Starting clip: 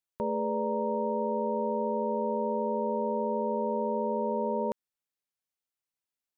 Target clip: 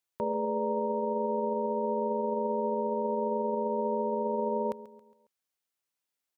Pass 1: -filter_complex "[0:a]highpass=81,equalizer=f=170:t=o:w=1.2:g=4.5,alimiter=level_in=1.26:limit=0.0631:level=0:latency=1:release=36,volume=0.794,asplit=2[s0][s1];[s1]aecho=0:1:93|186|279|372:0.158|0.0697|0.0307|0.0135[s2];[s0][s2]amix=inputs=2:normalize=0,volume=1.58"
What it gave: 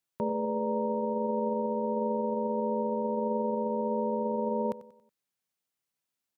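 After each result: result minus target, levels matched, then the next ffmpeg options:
echo 44 ms early; 125 Hz band +3.0 dB
-filter_complex "[0:a]highpass=81,equalizer=f=170:t=o:w=1.2:g=4.5,alimiter=level_in=1.26:limit=0.0631:level=0:latency=1:release=36,volume=0.794,asplit=2[s0][s1];[s1]aecho=0:1:137|274|411|548:0.158|0.0697|0.0307|0.0135[s2];[s0][s2]amix=inputs=2:normalize=0,volume=1.58"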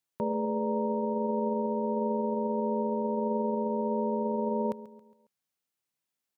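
125 Hz band +4.0 dB
-filter_complex "[0:a]highpass=81,equalizer=f=170:t=o:w=1.2:g=-3.5,alimiter=level_in=1.26:limit=0.0631:level=0:latency=1:release=36,volume=0.794,asplit=2[s0][s1];[s1]aecho=0:1:137|274|411|548:0.158|0.0697|0.0307|0.0135[s2];[s0][s2]amix=inputs=2:normalize=0,volume=1.58"

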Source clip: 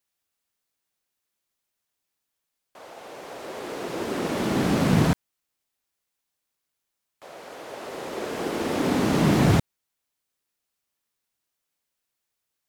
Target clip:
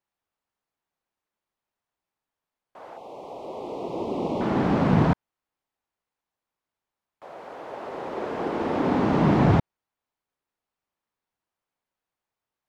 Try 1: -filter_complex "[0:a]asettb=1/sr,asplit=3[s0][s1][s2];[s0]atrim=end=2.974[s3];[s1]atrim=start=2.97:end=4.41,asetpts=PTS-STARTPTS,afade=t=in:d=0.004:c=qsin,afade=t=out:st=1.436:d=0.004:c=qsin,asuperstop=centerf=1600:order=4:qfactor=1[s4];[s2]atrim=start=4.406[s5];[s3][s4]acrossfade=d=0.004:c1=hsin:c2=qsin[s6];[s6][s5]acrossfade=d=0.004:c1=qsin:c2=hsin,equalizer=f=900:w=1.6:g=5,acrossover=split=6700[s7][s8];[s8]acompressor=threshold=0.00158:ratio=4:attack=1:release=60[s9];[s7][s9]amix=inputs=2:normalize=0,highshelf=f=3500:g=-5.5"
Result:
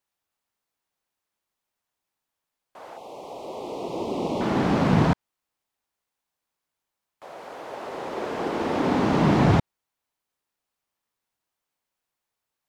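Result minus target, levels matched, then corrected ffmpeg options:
8 kHz band +8.0 dB
-filter_complex "[0:a]asettb=1/sr,asplit=3[s0][s1][s2];[s0]atrim=end=2.974[s3];[s1]atrim=start=2.97:end=4.41,asetpts=PTS-STARTPTS,afade=t=in:d=0.004:c=qsin,afade=t=out:st=1.436:d=0.004:c=qsin,asuperstop=centerf=1600:order=4:qfactor=1[s4];[s2]atrim=start=4.406[s5];[s3][s4]acrossfade=d=0.004:c1=hsin:c2=qsin[s6];[s6][s5]acrossfade=d=0.004:c1=qsin:c2=hsin,equalizer=f=900:w=1.6:g=5,acrossover=split=6700[s7][s8];[s8]acompressor=threshold=0.00158:ratio=4:attack=1:release=60[s9];[s7][s9]amix=inputs=2:normalize=0,highshelf=f=3500:g=-16"

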